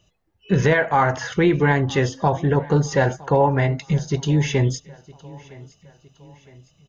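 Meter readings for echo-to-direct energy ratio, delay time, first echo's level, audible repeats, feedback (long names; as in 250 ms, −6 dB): −21.5 dB, 962 ms, −22.5 dB, 2, 47%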